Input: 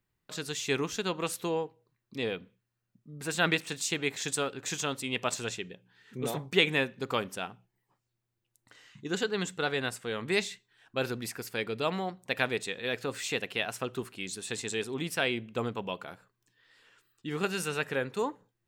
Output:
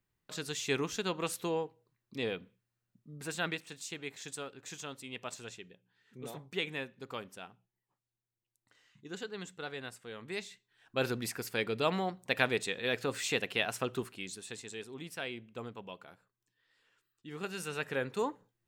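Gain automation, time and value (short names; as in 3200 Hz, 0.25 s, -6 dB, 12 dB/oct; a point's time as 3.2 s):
3.13 s -2.5 dB
3.6 s -11 dB
10.45 s -11 dB
11.04 s 0 dB
13.95 s 0 dB
14.66 s -10.5 dB
17.27 s -10.5 dB
18.07 s -2 dB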